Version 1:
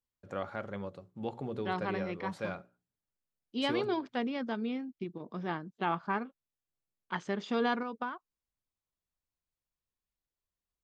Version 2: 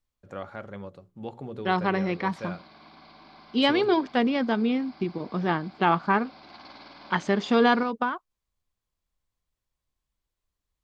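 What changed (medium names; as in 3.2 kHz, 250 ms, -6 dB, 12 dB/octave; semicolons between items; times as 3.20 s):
second voice +10.0 dB; background: unmuted; master: add bass shelf 62 Hz +6 dB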